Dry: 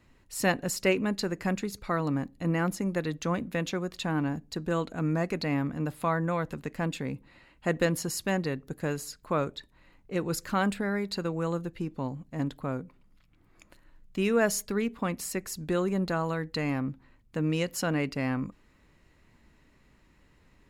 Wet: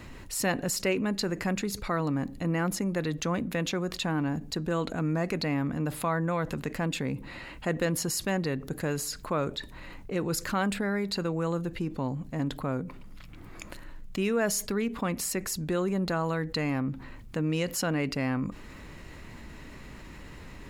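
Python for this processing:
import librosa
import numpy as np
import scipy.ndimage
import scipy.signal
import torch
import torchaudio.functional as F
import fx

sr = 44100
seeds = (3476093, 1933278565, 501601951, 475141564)

y = fx.env_flatten(x, sr, amount_pct=50)
y = F.gain(torch.from_numpy(y), -3.5).numpy()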